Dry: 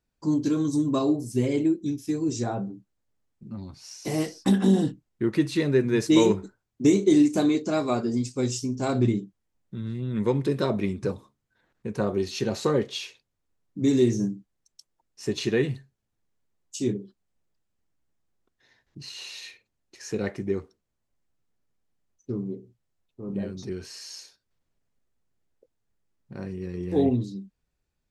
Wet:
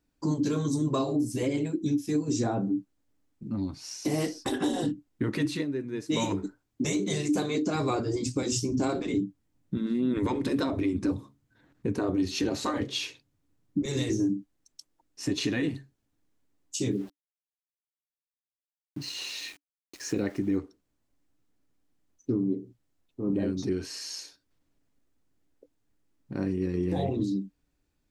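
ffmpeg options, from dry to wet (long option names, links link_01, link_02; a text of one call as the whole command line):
ffmpeg -i in.wav -filter_complex "[0:a]asettb=1/sr,asplit=3[link_01][link_02][link_03];[link_01]atrim=end=7.754[link_04];[link_02]atrim=start=7.75:end=13.86,asetpts=PTS-STARTPTS,afade=type=in:duration=0.004:curve=qsin,afade=type=out:start_time=6.106:duration=0.004:curve=qsin,equalizer=frequency=120:width=0.92:gain=9.5[link_05];[link_03]atrim=start=13.856[link_06];[link_04][link_05]acrossfade=duration=0.004:curve1=hsin:curve2=qsin[link_07];[link_07][link_06]acrossfade=duration=0.004:curve1=qsin:curve2=hsin,asettb=1/sr,asplit=3[link_08][link_09][link_10];[link_08]atrim=end=16.914[link_11];[link_09]atrim=start=16.91:end=20.57,asetpts=PTS-STARTPTS,afade=type=in:duration=0.004:curve=qsin,afade=type=out:start_time=3.656:duration=0.004:curve=qsin,aeval=exprs='val(0)*gte(abs(val(0)),0.00335)':channel_layout=same[link_12];[link_10]atrim=start=20.566[link_13];[link_11][link_12]acrossfade=duration=0.004:curve1=hsin:curve2=qsin[link_14];[link_14][link_13]acrossfade=duration=0.004:curve1=qsin:curve2=hsin,asplit=3[link_15][link_16][link_17];[link_15]atrim=end=5.66,asetpts=PTS-STARTPTS,afade=type=out:start_time=5.48:duration=0.18:silence=0.149624[link_18];[link_16]atrim=start=5.66:end=6.08,asetpts=PTS-STARTPTS,volume=-16.5dB[link_19];[link_17]atrim=start=6.08,asetpts=PTS-STARTPTS,afade=type=in:duration=0.18:silence=0.149624[link_20];[link_18][link_19][link_20]concat=n=3:v=0:a=1,afftfilt=real='re*lt(hypot(re,im),0.398)':imag='im*lt(hypot(re,im),0.398)':win_size=1024:overlap=0.75,equalizer=frequency=290:width=5.5:gain=13.5,alimiter=limit=-21.5dB:level=0:latency=1:release=224,volume=3dB" out.wav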